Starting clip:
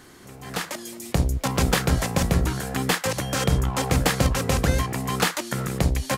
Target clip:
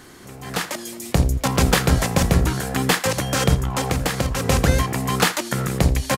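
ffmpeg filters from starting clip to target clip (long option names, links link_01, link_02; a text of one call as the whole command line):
ffmpeg -i in.wav -filter_complex "[0:a]asplit=3[link_01][link_02][link_03];[link_01]afade=type=out:start_time=3.54:duration=0.02[link_04];[link_02]acompressor=threshold=-22dB:ratio=6,afade=type=in:start_time=3.54:duration=0.02,afade=type=out:start_time=4.44:duration=0.02[link_05];[link_03]afade=type=in:start_time=4.44:duration=0.02[link_06];[link_04][link_05][link_06]amix=inputs=3:normalize=0,asplit=2[link_07][link_08];[link_08]aecho=0:1:84:0.0944[link_09];[link_07][link_09]amix=inputs=2:normalize=0,volume=4dB" out.wav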